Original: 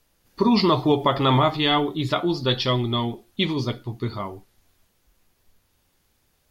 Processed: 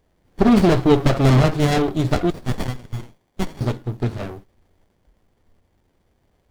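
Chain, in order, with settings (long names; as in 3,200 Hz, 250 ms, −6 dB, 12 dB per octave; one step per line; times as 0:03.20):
0:02.30–0:03.61: elliptic high-pass filter 1,500 Hz
windowed peak hold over 33 samples
level +5.5 dB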